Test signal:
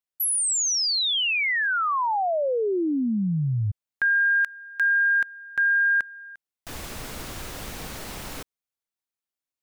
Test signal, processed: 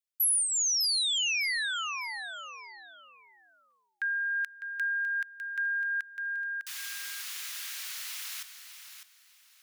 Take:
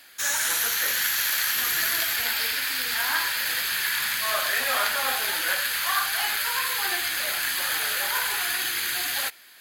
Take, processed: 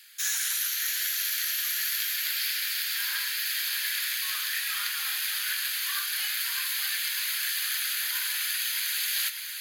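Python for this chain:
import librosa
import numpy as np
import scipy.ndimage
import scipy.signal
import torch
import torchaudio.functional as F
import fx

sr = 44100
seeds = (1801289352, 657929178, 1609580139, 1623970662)

p1 = fx.dynamic_eq(x, sr, hz=8100.0, q=6.3, threshold_db=-52.0, ratio=4.0, max_db=-6)
p2 = p1 + fx.echo_feedback(p1, sr, ms=603, feedback_pct=25, wet_db=-9.5, dry=0)
p3 = fx.rider(p2, sr, range_db=4, speed_s=0.5)
p4 = scipy.signal.sosfilt(scipy.signal.bessel(4, 2300.0, 'highpass', norm='mag', fs=sr, output='sos'), p3)
y = p4 * 10.0 ** (-2.0 / 20.0)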